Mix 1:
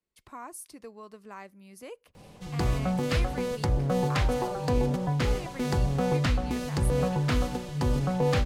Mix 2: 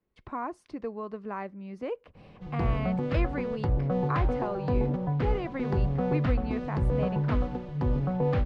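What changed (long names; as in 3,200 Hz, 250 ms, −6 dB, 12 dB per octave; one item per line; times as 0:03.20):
speech +11.5 dB
master: add head-to-tape spacing loss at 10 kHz 39 dB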